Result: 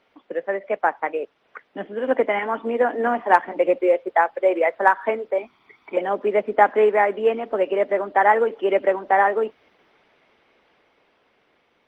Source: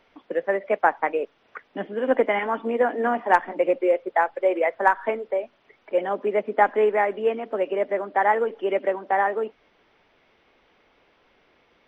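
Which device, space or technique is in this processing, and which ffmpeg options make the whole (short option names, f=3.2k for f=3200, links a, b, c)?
video call: -filter_complex "[0:a]asettb=1/sr,asplit=3[a][b][c];[a]atrim=end=5.384[d];[b]atrim=start=5.38:end=5.97,asetpts=PTS-STARTPTS,afade=t=in:d=0.004:c=qsin,afade=t=out:st=0.586:d=0.004:c=qsin,aecho=1:1:0.9:0.86,atrim=end_sample=26019[e];[c]atrim=start=5.966[f];[d][e]acrossfade=d=0.004:c1=hsin:c2=qsin[g];[g][f]acrossfade=d=0.004:c1=qsin:c2=hsin,highpass=f=140:p=1,dynaudnorm=f=530:g=9:m=13.5dB,volume=-1dB" -ar 48000 -c:a libopus -b:a 24k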